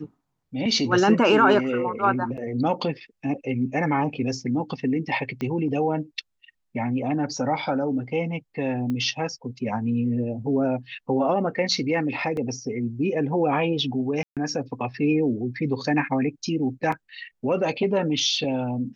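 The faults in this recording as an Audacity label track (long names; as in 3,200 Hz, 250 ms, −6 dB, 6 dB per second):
2.370000	2.380000	drop-out 7 ms
5.410000	5.410000	click −18 dBFS
8.900000	8.900000	click −19 dBFS
12.370000	12.370000	drop-out 2.3 ms
14.230000	14.370000	drop-out 137 ms
16.920000	16.920000	drop-out 4 ms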